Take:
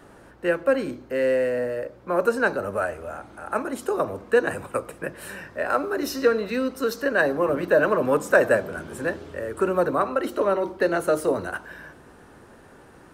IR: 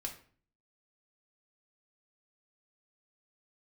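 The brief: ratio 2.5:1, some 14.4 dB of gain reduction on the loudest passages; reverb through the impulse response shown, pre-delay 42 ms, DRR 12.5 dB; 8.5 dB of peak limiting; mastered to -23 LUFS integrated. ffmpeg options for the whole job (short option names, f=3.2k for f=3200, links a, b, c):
-filter_complex "[0:a]acompressor=threshold=-36dB:ratio=2.5,alimiter=level_in=3dB:limit=-24dB:level=0:latency=1,volume=-3dB,asplit=2[a][b];[1:a]atrim=start_sample=2205,adelay=42[c];[b][c]afir=irnorm=-1:irlink=0,volume=-11.5dB[d];[a][d]amix=inputs=2:normalize=0,volume=14dB"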